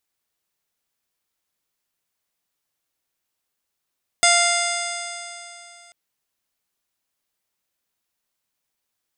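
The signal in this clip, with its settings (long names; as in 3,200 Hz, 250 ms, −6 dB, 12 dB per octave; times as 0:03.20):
stiff-string partials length 1.69 s, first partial 695 Hz, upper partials −4/0/−11/−3.5/−17.5/−3/−17.5/−3/−12.5/−3/−5 dB, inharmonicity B 0.00086, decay 2.87 s, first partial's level −18 dB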